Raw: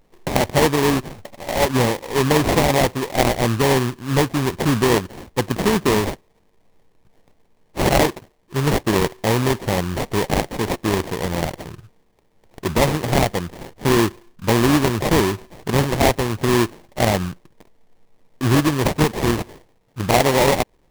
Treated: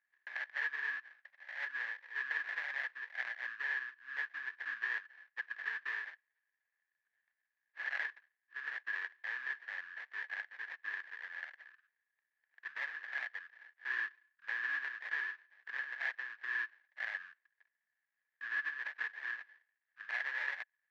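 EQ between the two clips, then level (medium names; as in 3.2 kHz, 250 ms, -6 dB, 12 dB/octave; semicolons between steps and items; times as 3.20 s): band-pass filter 1.7 kHz, Q 16; distance through air 250 m; differentiator; +13.0 dB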